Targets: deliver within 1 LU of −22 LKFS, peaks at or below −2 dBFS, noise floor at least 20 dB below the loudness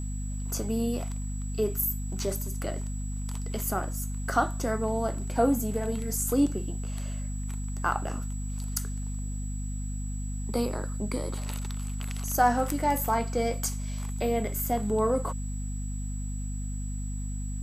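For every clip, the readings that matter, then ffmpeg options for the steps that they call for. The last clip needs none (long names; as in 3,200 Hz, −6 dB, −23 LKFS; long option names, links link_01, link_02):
mains hum 50 Hz; hum harmonics up to 250 Hz; level of the hum −30 dBFS; interfering tone 7,800 Hz; level of the tone −45 dBFS; integrated loudness −30.5 LKFS; sample peak −10.5 dBFS; target loudness −22.0 LKFS
→ -af "bandreject=frequency=50:width_type=h:width=4,bandreject=frequency=100:width_type=h:width=4,bandreject=frequency=150:width_type=h:width=4,bandreject=frequency=200:width_type=h:width=4,bandreject=frequency=250:width_type=h:width=4"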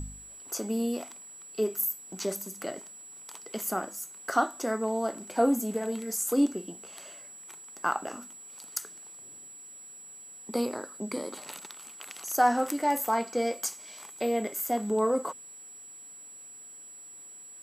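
mains hum none found; interfering tone 7,800 Hz; level of the tone −45 dBFS
→ -af "bandreject=frequency=7800:width=30"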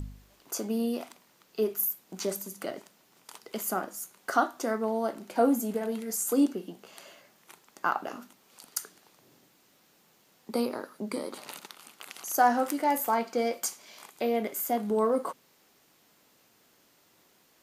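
interfering tone none found; integrated loudness −30.0 LKFS; sample peak −10.5 dBFS; target loudness −22.0 LKFS
→ -af "volume=8dB"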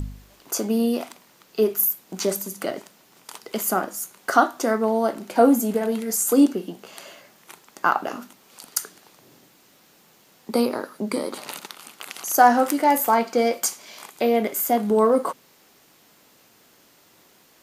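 integrated loudness −22.0 LKFS; sample peak −2.5 dBFS; background noise floor −57 dBFS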